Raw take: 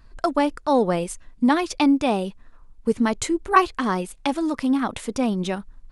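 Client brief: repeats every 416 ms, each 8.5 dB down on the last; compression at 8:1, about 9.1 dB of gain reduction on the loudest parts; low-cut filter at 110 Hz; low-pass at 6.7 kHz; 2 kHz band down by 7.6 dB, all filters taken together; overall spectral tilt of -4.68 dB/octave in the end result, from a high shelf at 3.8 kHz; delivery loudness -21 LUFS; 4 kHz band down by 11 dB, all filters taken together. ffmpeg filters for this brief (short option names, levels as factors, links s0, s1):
-af "highpass=110,lowpass=6700,equalizer=f=2000:t=o:g=-7.5,highshelf=f=3800:g=-5,equalizer=f=4000:t=o:g=-8,acompressor=threshold=0.0708:ratio=8,aecho=1:1:416|832|1248|1664:0.376|0.143|0.0543|0.0206,volume=2.51"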